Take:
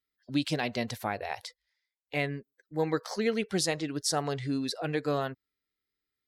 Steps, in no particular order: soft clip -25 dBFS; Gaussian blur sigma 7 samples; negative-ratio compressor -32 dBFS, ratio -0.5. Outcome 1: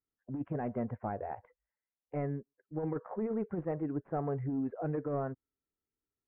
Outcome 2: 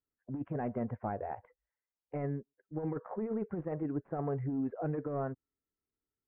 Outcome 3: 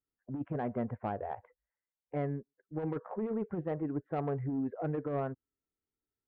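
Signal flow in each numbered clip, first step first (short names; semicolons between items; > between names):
soft clip > Gaussian blur > negative-ratio compressor; soft clip > negative-ratio compressor > Gaussian blur; Gaussian blur > soft clip > negative-ratio compressor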